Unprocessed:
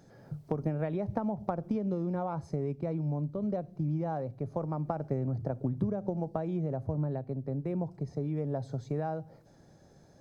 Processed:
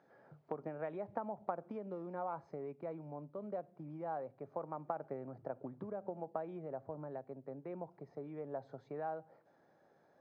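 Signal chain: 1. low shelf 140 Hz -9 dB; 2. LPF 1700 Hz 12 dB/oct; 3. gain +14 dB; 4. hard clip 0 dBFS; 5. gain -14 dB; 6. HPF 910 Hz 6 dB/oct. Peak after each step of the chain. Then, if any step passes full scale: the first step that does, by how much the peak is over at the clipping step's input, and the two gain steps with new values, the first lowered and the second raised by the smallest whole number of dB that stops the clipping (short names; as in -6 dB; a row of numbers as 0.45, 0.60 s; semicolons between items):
-16.0, -16.5, -2.5, -2.5, -16.5, -21.0 dBFS; no overload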